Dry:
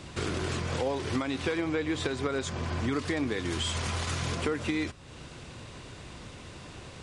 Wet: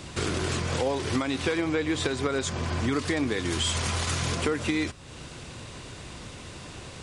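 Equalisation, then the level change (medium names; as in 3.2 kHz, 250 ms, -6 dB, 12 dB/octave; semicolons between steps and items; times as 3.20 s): treble shelf 5.8 kHz +6 dB; +3.0 dB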